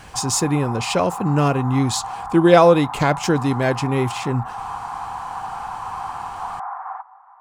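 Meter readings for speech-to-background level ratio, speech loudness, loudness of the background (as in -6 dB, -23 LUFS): 11.5 dB, -19.0 LUFS, -30.5 LUFS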